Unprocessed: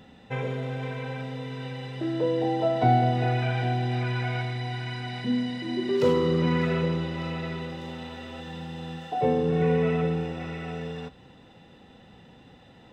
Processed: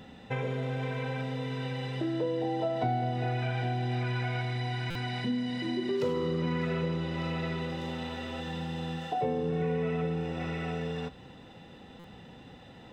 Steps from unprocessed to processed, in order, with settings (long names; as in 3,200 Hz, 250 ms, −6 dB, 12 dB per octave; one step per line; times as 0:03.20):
downward compressor 3 to 1, threshold −32 dBFS, peak gain reduction 12 dB
buffer that repeats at 0:04.90/0:11.99, samples 256, times 8
level +2 dB